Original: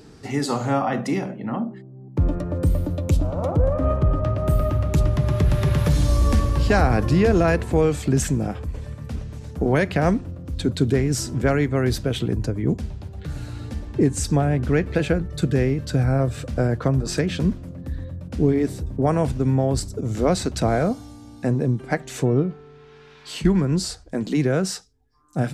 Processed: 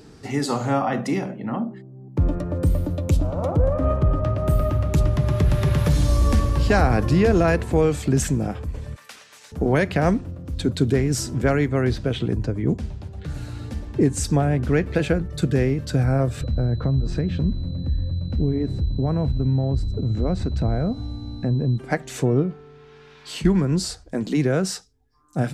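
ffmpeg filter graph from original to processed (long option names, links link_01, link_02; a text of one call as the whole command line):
ffmpeg -i in.wav -filter_complex "[0:a]asettb=1/sr,asplit=3[link_01][link_02][link_03];[link_01]atrim=end=8.964[link_04];[link_02]atrim=start=8.96:end=9.52,asetpts=PTS-STARTPTS,afade=type=in:duration=0.004:curve=qsin,afade=type=out:start_time=0.556:duration=0.004:curve=qsin,highpass=1400,acontrast=81[link_05];[link_03]atrim=start=9.516[link_06];[link_04][link_05]acrossfade=duration=0.004:curve1=hsin:curve2=qsin[link_07];[link_07][link_06]acrossfade=duration=0.004:curve1=qsin:curve2=hsin,asettb=1/sr,asplit=3[link_08][link_09][link_10];[link_08]atrim=end=11.814[link_11];[link_09]atrim=start=11.81:end=13.34,asetpts=PTS-STARTPTS,afade=type=in:duration=0.004:curve=qsin,afade=type=out:start_time=1.526:duration=0.004:curve=qsin,acrossover=split=4200[link_12][link_13];[link_13]acompressor=threshold=-48dB:ratio=4:attack=1:release=60[link_14];[link_12][link_14]amix=inputs=2:normalize=0,lowpass=11000[link_15];[link_10]atrim=start=13.336[link_16];[link_11][link_15]acrossfade=duration=0.004:curve1=hsin:curve2=qsin[link_17];[link_17][link_16]acrossfade=duration=0.004:curve1=qsin:curve2=hsin,asettb=1/sr,asplit=3[link_18][link_19][link_20];[link_18]atrim=end=16.414[link_21];[link_19]atrim=start=16.41:end=21.78,asetpts=PTS-STARTPTS,afade=type=in:duration=0.004:curve=qsin,afade=type=out:start_time=5.366:duration=0.004:curve=qsin,aemphasis=mode=reproduction:type=riaa,acompressor=threshold=-26dB:ratio=2:attack=3.2:release=140:knee=1:detection=peak,aeval=exprs='val(0)+0.00398*sin(2*PI*4000*n/s)':channel_layout=same[link_22];[link_20]atrim=start=21.776[link_23];[link_21][link_22]acrossfade=duration=0.004:curve1=hsin:curve2=qsin[link_24];[link_24][link_23]acrossfade=duration=0.004:curve1=qsin:curve2=hsin" out.wav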